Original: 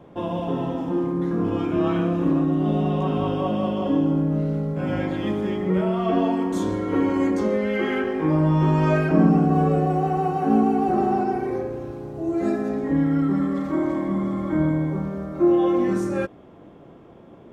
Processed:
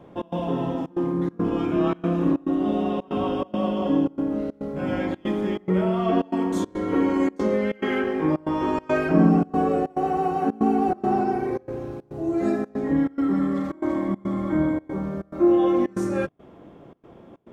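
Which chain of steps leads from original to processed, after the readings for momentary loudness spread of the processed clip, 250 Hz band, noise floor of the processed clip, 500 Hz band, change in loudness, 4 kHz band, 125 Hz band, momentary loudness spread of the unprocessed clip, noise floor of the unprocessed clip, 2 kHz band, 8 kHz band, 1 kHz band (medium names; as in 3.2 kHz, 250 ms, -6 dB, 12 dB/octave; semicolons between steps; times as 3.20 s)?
7 LU, -1.5 dB, -50 dBFS, -1.0 dB, -1.5 dB, -1.0 dB, -6.0 dB, 7 LU, -47 dBFS, -1.0 dB, no reading, -1.0 dB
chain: de-hum 51.75 Hz, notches 3; trance gate "xx.xxxxx.x" 140 bpm -24 dB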